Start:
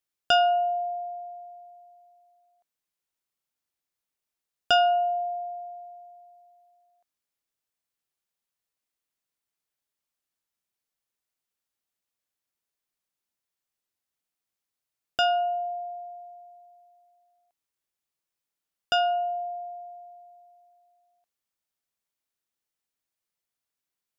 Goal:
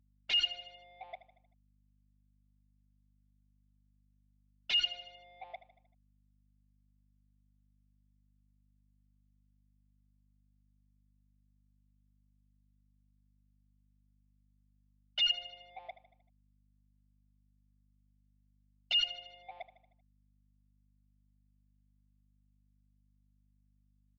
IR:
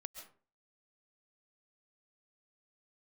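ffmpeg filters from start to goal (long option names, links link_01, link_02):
-filter_complex "[0:a]afftfilt=real='re*gte(hypot(re,im),0.2)':imag='im*gte(hypot(re,im),0.2)':win_size=1024:overlap=0.75,areverse,acompressor=threshold=-35dB:ratio=10,areverse,highpass=frequency=590:width=0.5412,highpass=frequency=590:width=1.3066,afftfilt=real='re*lt(hypot(re,im),0.0398)':imag='im*lt(hypot(re,im),0.0398)':win_size=1024:overlap=0.75,aresample=16000,aeval=exprs='0.00944*sin(PI/2*5.62*val(0)/0.00944)':channel_layout=same,aresample=44100,agate=range=-33dB:threshold=-56dB:ratio=3:detection=peak,asplit=2[link_01][link_02];[link_02]highpass=frequency=720:poles=1,volume=13dB,asoftclip=type=tanh:threshold=-34.5dB[link_03];[link_01][link_03]amix=inputs=2:normalize=0,lowpass=frequency=1100:poles=1,volume=-6dB,aexciter=amount=11.6:drive=7.5:freq=2200,lowpass=frequency=3400:width=0.5412,lowpass=frequency=3400:width=1.3066,aecho=1:1:77|154|231|308|385:0.178|0.0978|0.0538|0.0296|0.0163,aeval=exprs='val(0)+0.000316*(sin(2*PI*50*n/s)+sin(2*PI*2*50*n/s)/2+sin(2*PI*3*50*n/s)/3+sin(2*PI*4*50*n/s)/4+sin(2*PI*5*50*n/s)/5)':channel_layout=same,volume=1dB" -ar 24000 -c:a libmp3lame -b:a 40k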